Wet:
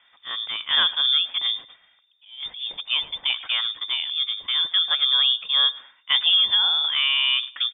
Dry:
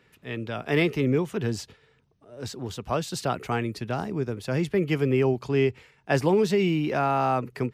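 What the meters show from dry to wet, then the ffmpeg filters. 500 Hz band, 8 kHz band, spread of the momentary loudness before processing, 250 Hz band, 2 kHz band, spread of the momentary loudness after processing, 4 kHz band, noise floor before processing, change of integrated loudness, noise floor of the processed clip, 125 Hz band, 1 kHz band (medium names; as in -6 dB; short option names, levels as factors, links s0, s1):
under -25 dB, under -40 dB, 13 LU, under -30 dB, +4.5 dB, 13 LU, +23.5 dB, -63 dBFS, +6.0 dB, -60 dBFS, under -30 dB, -6.5 dB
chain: -af "lowpass=f=3100:t=q:w=0.5098,lowpass=f=3100:t=q:w=0.6013,lowpass=f=3100:t=q:w=0.9,lowpass=f=3100:t=q:w=2.563,afreqshift=-3700,aecho=1:1:106|212:0.0891|0.0223,volume=1.33"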